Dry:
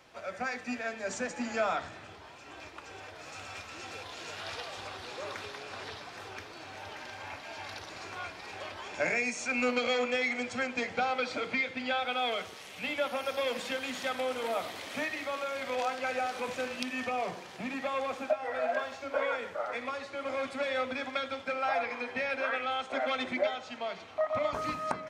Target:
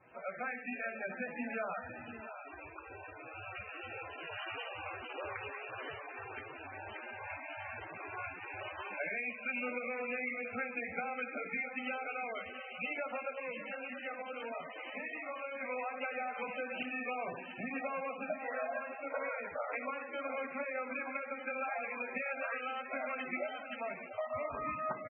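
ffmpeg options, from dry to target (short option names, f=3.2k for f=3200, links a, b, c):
-filter_complex "[0:a]adynamicequalizer=threshold=0.00447:dfrequency=3000:dqfactor=0.77:tfrequency=3000:tqfactor=0.77:attack=5:release=100:ratio=0.375:range=2.5:mode=boostabove:tftype=bell,acompressor=threshold=-32dB:ratio=8,asettb=1/sr,asplit=3[a][b][c];[a]atrim=end=13.324[d];[b]atrim=start=13.32:end=15.61,asetpts=PTS-STARTPTS,afade=t=in:d=0.004:c=qsin,afade=t=out:st=2.286:d=0.004:c=qsin,flanger=delay=16:depth=6.2:speed=1.6[e];[c]atrim=start=15.606[f];[d][e]acrossfade=d=0.004:c1=hsin:c2=qsin[g];[g][f]acrossfade=d=0.004:c1=qsin:c2=hsin,aecho=1:1:59|593|687:0.178|0.178|0.251,volume=-2.5dB" -ar 22050 -c:a libmp3lame -b:a 8k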